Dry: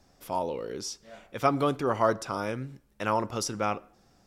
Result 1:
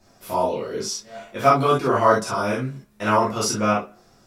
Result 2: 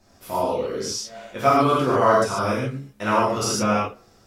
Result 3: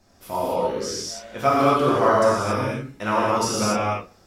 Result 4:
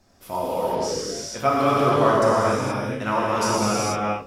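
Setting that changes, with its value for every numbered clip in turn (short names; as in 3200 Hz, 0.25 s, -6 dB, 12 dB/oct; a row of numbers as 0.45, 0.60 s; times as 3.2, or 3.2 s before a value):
non-linear reverb, gate: 90, 170, 300, 500 ms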